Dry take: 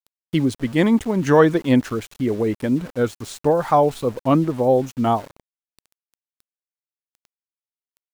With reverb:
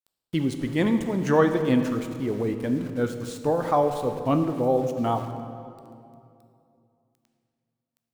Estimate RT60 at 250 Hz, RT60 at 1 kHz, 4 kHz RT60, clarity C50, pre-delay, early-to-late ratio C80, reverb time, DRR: 3.1 s, 2.4 s, 1.7 s, 8.0 dB, 11 ms, 9.0 dB, 2.6 s, 6.5 dB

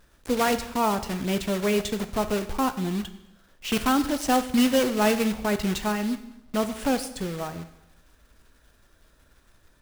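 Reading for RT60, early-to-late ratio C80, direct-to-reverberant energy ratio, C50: 0.90 s, 15.0 dB, 9.5 dB, 13.0 dB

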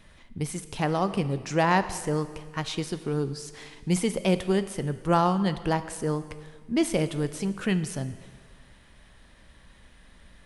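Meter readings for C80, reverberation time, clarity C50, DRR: 14.0 dB, 1.7 s, 13.0 dB, 11.5 dB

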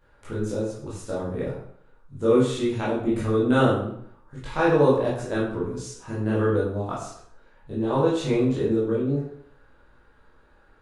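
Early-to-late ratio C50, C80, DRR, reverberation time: 2.0 dB, 6.0 dB, -9.0 dB, 0.65 s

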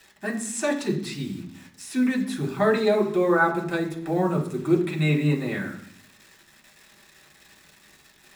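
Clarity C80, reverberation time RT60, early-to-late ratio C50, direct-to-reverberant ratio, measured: 12.5 dB, 0.65 s, 10.0 dB, -2.5 dB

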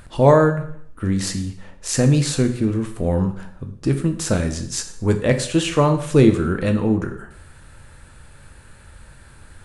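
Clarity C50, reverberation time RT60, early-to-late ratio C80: 10.5 dB, 0.60 s, 14.0 dB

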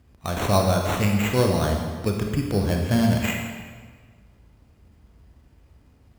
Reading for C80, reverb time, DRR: 4.5 dB, 1.6 s, 1.5 dB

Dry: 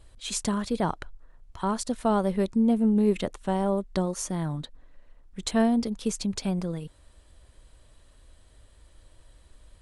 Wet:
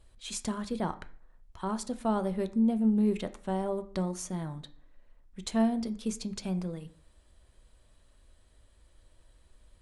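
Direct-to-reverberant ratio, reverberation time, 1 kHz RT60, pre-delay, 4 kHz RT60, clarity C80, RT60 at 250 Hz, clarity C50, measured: 9.0 dB, 0.55 s, 0.50 s, 3 ms, 0.50 s, 20.5 dB, 0.65 s, 16.5 dB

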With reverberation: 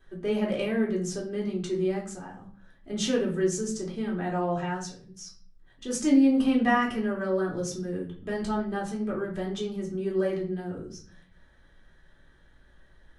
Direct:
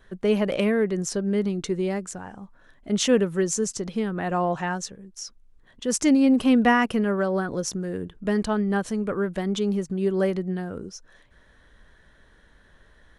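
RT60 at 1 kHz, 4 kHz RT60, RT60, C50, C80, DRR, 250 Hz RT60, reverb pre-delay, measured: 0.40 s, 0.40 s, 0.45 s, 8.5 dB, 13.0 dB, -3.5 dB, 0.80 s, 3 ms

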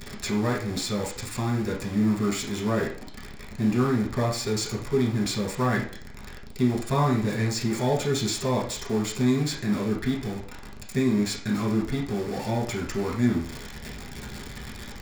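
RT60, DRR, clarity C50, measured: 0.45 s, -3.5 dB, 6.0 dB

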